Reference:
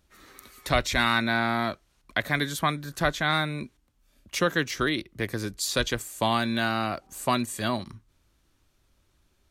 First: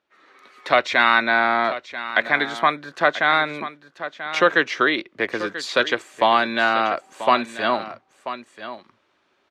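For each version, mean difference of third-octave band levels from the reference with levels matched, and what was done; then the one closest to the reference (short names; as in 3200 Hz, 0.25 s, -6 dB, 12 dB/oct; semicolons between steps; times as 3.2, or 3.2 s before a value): 8.5 dB: BPF 430–2800 Hz; echo 0.987 s -13.5 dB; AGC gain up to 10.5 dB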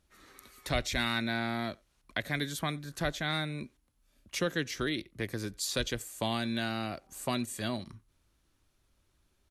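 2.5 dB: dynamic EQ 1100 Hz, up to -8 dB, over -40 dBFS, Q 1.3; speakerphone echo 90 ms, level -27 dB; gain -5 dB; MP2 192 kbps 44100 Hz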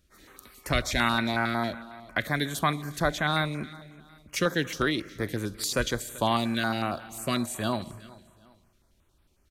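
3.5 dB: feedback echo 0.387 s, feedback 32%, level -20.5 dB; Schroeder reverb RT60 1.8 s, combs from 30 ms, DRR 16.5 dB; stepped notch 11 Hz 870–6600 Hz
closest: second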